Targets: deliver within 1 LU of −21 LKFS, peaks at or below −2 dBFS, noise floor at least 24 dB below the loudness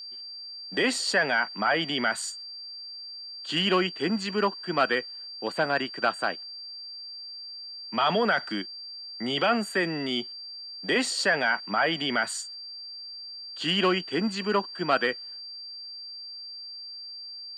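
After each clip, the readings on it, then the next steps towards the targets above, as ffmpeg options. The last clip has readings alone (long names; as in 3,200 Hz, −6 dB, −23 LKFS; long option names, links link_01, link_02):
interfering tone 4,700 Hz; level of the tone −38 dBFS; integrated loudness −28.0 LKFS; sample peak −10.0 dBFS; target loudness −21.0 LKFS
→ -af "bandreject=frequency=4700:width=30"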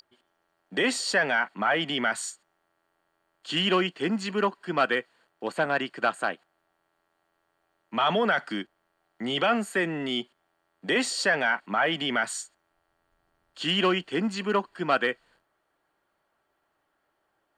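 interfering tone none found; integrated loudness −26.5 LKFS; sample peak −10.0 dBFS; target loudness −21.0 LKFS
→ -af "volume=5.5dB"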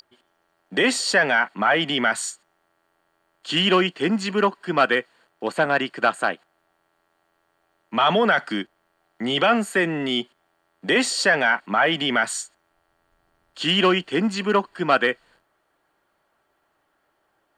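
integrated loudness −21.0 LKFS; sample peak −4.5 dBFS; background noise floor −70 dBFS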